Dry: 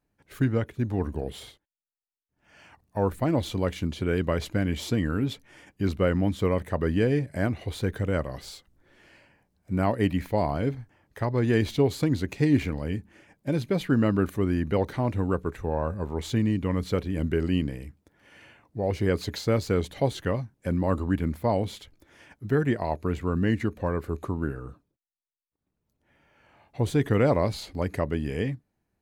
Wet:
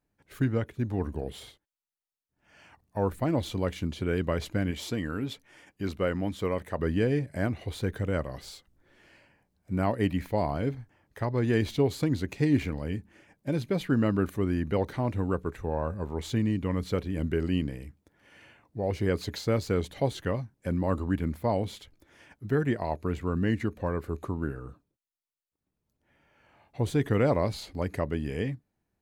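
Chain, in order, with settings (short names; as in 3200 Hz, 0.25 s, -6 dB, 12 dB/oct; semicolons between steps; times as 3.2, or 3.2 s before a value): 4.71–6.79 low shelf 250 Hz -6.5 dB; gain -2.5 dB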